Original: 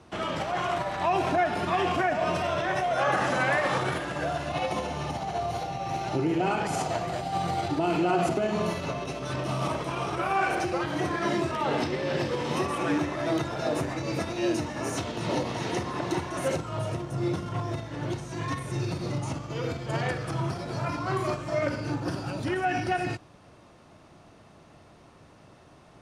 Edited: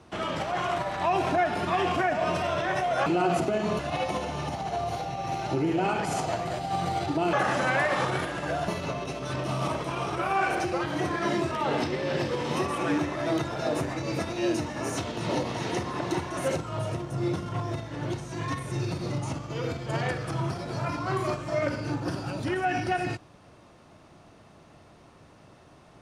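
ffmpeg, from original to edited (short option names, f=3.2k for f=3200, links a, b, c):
-filter_complex "[0:a]asplit=5[a][b][c][d][e];[a]atrim=end=3.062[f];[b]atrim=start=7.948:end=8.682[g];[c]atrim=start=4.408:end=7.952[h];[d]atrim=start=3.058:end=4.412[i];[e]atrim=start=8.678[j];[f][g]acrossfade=d=0.004:c1=hsin:c2=hsin[k];[k][h]acrossfade=d=0.004:c1=hsin:c2=hsin[l];[l][i]acrossfade=d=0.004:c1=hsin:c2=hsin[m];[m][j]acrossfade=d=0.004:c1=hsin:c2=hsin"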